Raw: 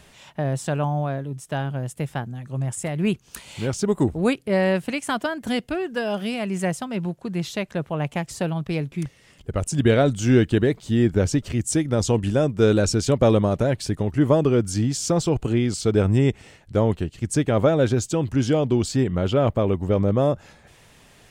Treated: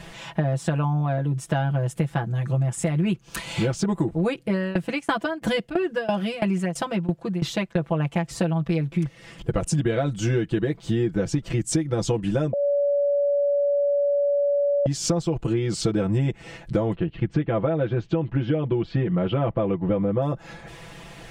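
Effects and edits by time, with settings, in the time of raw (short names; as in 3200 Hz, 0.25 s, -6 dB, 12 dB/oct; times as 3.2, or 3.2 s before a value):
4.42–7.83 tremolo saw down 3 Hz, depth 95%
12.53–14.86 bleep 571 Hz -12.5 dBFS
16.95–20.22 LPF 3200 Hz 24 dB/oct
whole clip: high shelf 5200 Hz -10.5 dB; comb 6 ms, depth 100%; compressor 10:1, threshold -28 dBFS; gain +8 dB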